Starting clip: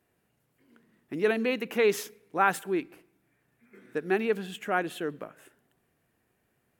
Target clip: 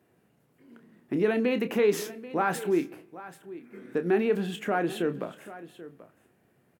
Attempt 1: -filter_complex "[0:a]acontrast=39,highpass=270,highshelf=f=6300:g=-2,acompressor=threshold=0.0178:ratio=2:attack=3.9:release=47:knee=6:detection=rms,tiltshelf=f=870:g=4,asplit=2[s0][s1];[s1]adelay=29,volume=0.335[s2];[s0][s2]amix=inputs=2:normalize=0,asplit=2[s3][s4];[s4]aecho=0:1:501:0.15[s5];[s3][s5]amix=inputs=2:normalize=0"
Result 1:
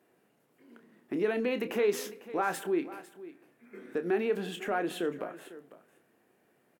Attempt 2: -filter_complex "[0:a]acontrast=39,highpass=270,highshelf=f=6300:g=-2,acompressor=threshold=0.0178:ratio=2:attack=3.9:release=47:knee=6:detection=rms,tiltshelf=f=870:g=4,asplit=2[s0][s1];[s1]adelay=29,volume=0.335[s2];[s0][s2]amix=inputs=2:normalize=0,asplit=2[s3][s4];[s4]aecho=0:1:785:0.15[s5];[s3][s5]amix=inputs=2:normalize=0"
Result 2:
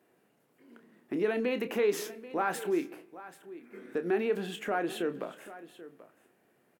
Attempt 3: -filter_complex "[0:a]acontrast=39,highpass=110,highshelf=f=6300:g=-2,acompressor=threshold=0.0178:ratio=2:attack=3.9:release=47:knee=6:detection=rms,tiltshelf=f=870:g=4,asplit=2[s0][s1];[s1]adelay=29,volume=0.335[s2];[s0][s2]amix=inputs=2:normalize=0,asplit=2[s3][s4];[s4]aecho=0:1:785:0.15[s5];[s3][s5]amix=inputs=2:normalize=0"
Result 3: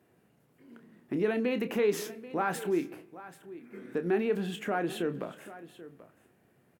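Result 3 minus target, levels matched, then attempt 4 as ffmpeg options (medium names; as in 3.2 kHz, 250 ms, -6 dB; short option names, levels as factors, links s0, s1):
compression: peak gain reduction +3.5 dB
-filter_complex "[0:a]acontrast=39,highpass=110,highshelf=f=6300:g=-2,acompressor=threshold=0.0422:ratio=2:attack=3.9:release=47:knee=6:detection=rms,tiltshelf=f=870:g=4,asplit=2[s0][s1];[s1]adelay=29,volume=0.335[s2];[s0][s2]amix=inputs=2:normalize=0,asplit=2[s3][s4];[s4]aecho=0:1:785:0.15[s5];[s3][s5]amix=inputs=2:normalize=0"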